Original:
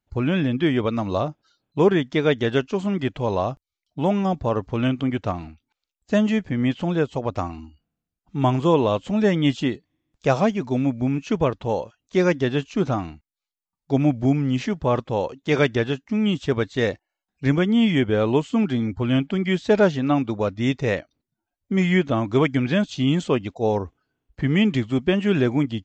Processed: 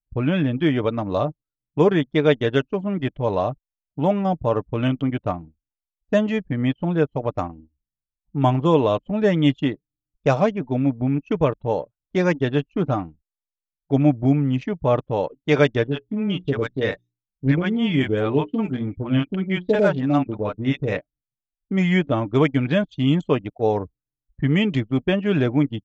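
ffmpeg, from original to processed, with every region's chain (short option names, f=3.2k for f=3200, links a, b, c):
-filter_complex "[0:a]asettb=1/sr,asplit=3[a][b][c];[a]atrim=end=15.874[d];[b]atrim=start=15.87:end=20.97,asetpts=PTS-STARTPTS,afade=t=in:d=0.004:c=qsin,afade=t=out:st=5.096:d=0.004:c=qsin,bandreject=f=60:t=h:w=6,bandreject=f=120:t=h:w=6,bandreject=f=180:t=h:w=6,bandreject=f=240:t=h:w=6,bandreject=f=300:t=h:w=6,bandreject=f=360:t=h:w=6,bandreject=f=420:t=h:w=6,acrossover=split=620|5400[e][f][g];[f]adelay=40[h];[g]adelay=210[i];[e][h][i]amix=inputs=3:normalize=0,atrim=end_sample=224910[j];[c]atrim=start=20.966[k];[d][j]acrossfade=d=0.004:c1=hsin:c2=qsin[l];[l][k]acrossfade=d=0.004:c1=qsin:c2=hsin,anlmdn=63.1,equalizer=f=580:t=o:w=0.32:g=2.5,aecho=1:1:6.7:0.33"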